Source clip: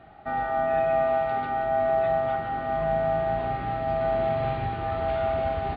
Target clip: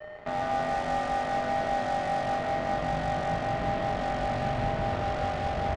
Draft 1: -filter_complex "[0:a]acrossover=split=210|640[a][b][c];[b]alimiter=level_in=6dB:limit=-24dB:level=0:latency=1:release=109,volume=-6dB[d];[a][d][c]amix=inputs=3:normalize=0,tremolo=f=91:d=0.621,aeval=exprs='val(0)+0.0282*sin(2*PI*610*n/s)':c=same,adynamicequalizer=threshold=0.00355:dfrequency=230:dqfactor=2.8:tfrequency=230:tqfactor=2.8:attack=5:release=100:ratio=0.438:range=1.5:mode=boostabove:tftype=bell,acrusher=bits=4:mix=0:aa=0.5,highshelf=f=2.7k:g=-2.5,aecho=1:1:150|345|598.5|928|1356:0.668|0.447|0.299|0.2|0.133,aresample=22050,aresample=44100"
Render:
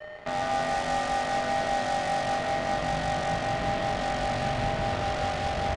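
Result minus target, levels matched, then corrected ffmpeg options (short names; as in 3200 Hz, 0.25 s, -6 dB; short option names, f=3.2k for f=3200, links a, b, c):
4000 Hz band +5.5 dB
-filter_complex "[0:a]acrossover=split=210|640[a][b][c];[b]alimiter=level_in=6dB:limit=-24dB:level=0:latency=1:release=109,volume=-6dB[d];[a][d][c]amix=inputs=3:normalize=0,tremolo=f=91:d=0.621,aeval=exprs='val(0)+0.0282*sin(2*PI*610*n/s)':c=same,adynamicequalizer=threshold=0.00355:dfrequency=230:dqfactor=2.8:tfrequency=230:tqfactor=2.8:attack=5:release=100:ratio=0.438:range=1.5:mode=boostabove:tftype=bell,acrusher=bits=4:mix=0:aa=0.5,highshelf=f=2.7k:g=-13,aecho=1:1:150|345|598.5|928|1356:0.668|0.447|0.299|0.2|0.133,aresample=22050,aresample=44100"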